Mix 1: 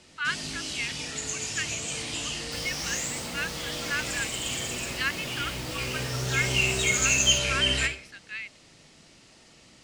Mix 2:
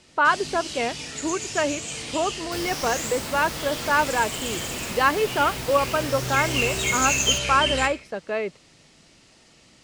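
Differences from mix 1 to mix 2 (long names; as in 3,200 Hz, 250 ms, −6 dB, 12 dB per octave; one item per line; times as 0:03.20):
speech: remove inverse Chebyshev high-pass filter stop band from 700 Hz, stop band 50 dB
second sound +7.5 dB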